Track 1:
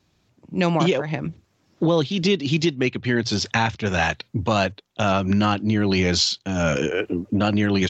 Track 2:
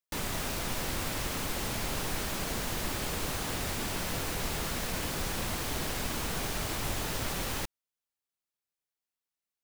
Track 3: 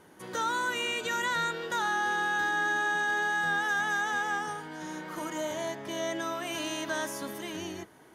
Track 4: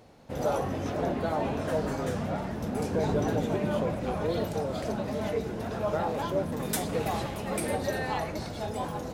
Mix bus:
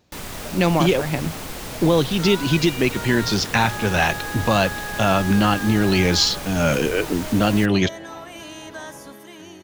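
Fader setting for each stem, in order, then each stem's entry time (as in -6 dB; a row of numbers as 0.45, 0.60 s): +2.0, +1.0, -3.5, -12.5 dB; 0.00, 0.00, 1.85, 0.00 s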